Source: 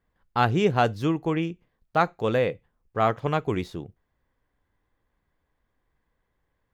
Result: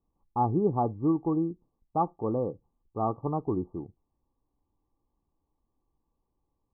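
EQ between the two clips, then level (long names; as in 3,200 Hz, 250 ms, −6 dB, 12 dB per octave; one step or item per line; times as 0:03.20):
Chebyshev low-pass with heavy ripple 1,200 Hz, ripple 9 dB
low-shelf EQ 110 Hz +6 dB
0.0 dB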